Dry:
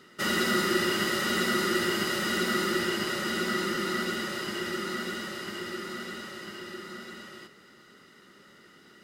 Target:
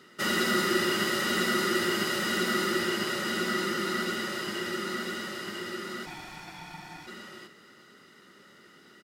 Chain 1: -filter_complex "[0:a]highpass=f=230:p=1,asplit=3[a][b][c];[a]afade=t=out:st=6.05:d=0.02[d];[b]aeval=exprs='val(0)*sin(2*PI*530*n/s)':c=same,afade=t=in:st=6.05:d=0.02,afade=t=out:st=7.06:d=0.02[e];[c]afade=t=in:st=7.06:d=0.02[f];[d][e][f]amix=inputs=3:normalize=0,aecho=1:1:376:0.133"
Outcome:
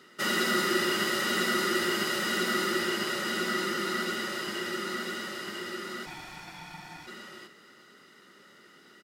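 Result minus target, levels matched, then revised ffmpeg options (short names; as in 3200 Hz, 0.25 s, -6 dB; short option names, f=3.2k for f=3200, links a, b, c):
125 Hz band -3.0 dB
-filter_complex "[0:a]highpass=f=92:p=1,asplit=3[a][b][c];[a]afade=t=out:st=6.05:d=0.02[d];[b]aeval=exprs='val(0)*sin(2*PI*530*n/s)':c=same,afade=t=in:st=6.05:d=0.02,afade=t=out:st=7.06:d=0.02[e];[c]afade=t=in:st=7.06:d=0.02[f];[d][e][f]amix=inputs=3:normalize=0,aecho=1:1:376:0.133"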